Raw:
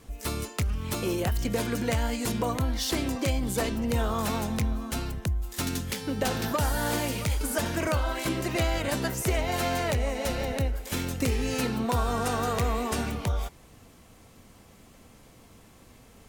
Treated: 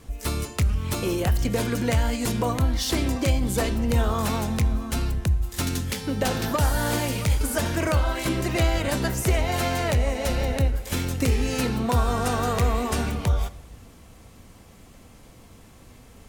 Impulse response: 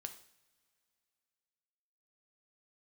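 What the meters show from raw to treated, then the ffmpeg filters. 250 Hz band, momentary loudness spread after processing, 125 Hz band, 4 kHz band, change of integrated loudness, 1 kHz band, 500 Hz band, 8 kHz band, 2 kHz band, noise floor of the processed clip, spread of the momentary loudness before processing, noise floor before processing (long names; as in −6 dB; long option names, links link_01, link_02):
+3.5 dB, 4 LU, +6.0 dB, +2.5 dB, +4.0 dB, +2.5 dB, +3.0 dB, +2.5 dB, +3.0 dB, −49 dBFS, 4 LU, −54 dBFS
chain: -filter_complex "[0:a]asplit=2[link_01][link_02];[1:a]atrim=start_sample=2205,asetrate=25578,aresample=44100,lowshelf=frequency=160:gain=11.5[link_03];[link_02][link_03]afir=irnorm=-1:irlink=0,volume=-7dB[link_04];[link_01][link_04]amix=inputs=2:normalize=0"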